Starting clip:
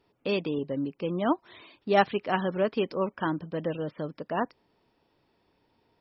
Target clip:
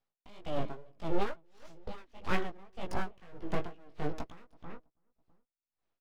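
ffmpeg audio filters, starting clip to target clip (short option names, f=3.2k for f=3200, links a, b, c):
-filter_complex "[0:a]agate=range=-29dB:threshold=-49dB:ratio=16:detection=peak,asettb=1/sr,asplit=3[a][b][c];[a]atrim=end=1.094[d];[b]atrim=start=1.09:end=2.27,asetpts=PTS-STARTPTS,afade=t=in:d=0.004:c=qsin,afade=t=out:st=1.176:d=0.004:c=qsin,aecho=1:1:6.7:0.51,atrim=end_sample=52038[e];[c]atrim=start=2.266[f];[d][e]acrossfade=d=0.004:c1=hsin:c2=qsin[g];[g][f]acrossfade=d=0.004:c1=qsin:c2=hsin,acrossover=split=130[h][i];[i]acompressor=threshold=-42dB:ratio=5[j];[h][j]amix=inputs=2:normalize=0,aeval=exprs='abs(val(0))':c=same,flanger=delay=16:depth=4.5:speed=2.1,asplit=2[k][l];[l]adelay=328,lowpass=f=1.3k:p=1,volume=-14dB,asplit=2[m][n];[n]adelay=328,lowpass=f=1.3k:p=1,volume=0.27,asplit=2[o][p];[p]adelay=328,lowpass=f=1.3k:p=1,volume=0.27[q];[k][m][o][q]amix=inputs=4:normalize=0,aeval=exprs='val(0)*pow(10,-26*(0.5-0.5*cos(2*PI*1.7*n/s))/20)':c=same,volume=16.5dB"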